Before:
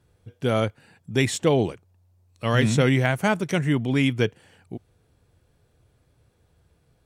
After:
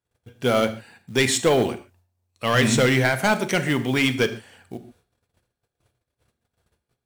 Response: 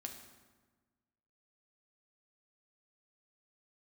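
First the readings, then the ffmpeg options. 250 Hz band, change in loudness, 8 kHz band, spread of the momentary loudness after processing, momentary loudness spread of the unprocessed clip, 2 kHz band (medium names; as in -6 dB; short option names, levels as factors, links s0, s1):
0.0 dB, +2.0 dB, +7.0 dB, 21 LU, 12 LU, +4.5 dB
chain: -filter_complex "[0:a]agate=range=0.0631:threshold=0.00112:ratio=16:detection=peak,lowshelf=f=340:g=-11,acrusher=bits=6:mode=log:mix=0:aa=0.000001,volume=8.91,asoftclip=hard,volume=0.112,asplit=2[s0][s1];[1:a]atrim=start_sample=2205,atrim=end_sample=6615[s2];[s1][s2]afir=irnorm=-1:irlink=0,volume=2[s3];[s0][s3]amix=inputs=2:normalize=0"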